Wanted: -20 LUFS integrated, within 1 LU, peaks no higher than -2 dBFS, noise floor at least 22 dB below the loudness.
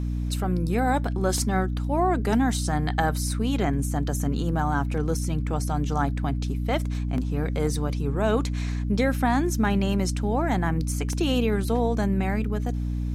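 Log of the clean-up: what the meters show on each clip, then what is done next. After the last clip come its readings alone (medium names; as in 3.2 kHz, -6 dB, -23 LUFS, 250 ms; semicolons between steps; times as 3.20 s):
dropouts 3; longest dropout 1.6 ms; hum 60 Hz; highest harmonic 300 Hz; hum level -25 dBFS; loudness -25.5 LUFS; peak level -10.5 dBFS; loudness target -20.0 LUFS
-> interpolate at 1.38/7.18/11.13 s, 1.6 ms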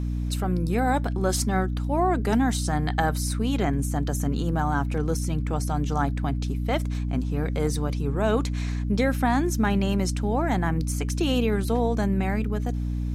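dropouts 0; hum 60 Hz; highest harmonic 300 Hz; hum level -25 dBFS
-> hum notches 60/120/180/240/300 Hz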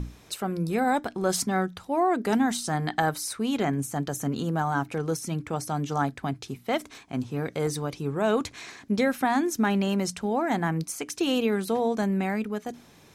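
hum not found; loudness -27.5 LUFS; peak level -11.0 dBFS; loudness target -20.0 LUFS
-> trim +7.5 dB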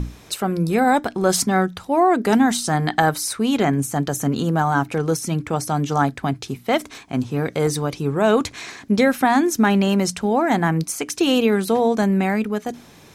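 loudness -20.0 LUFS; peak level -3.5 dBFS; noise floor -46 dBFS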